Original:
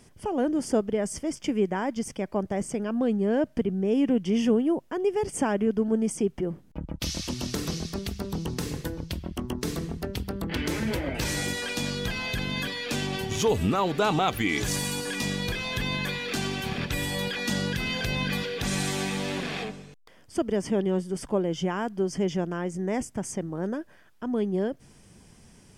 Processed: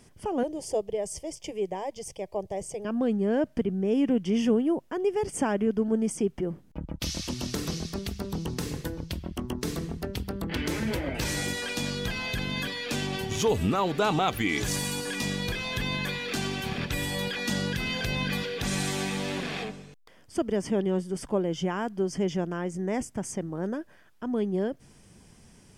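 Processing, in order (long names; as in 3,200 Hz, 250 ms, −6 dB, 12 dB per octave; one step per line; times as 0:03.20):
0:00.43–0:02.85: phaser with its sweep stopped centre 590 Hz, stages 4
level −1 dB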